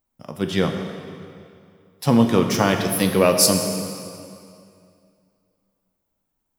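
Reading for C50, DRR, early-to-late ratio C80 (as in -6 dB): 5.5 dB, 4.0 dB, 6.5 dB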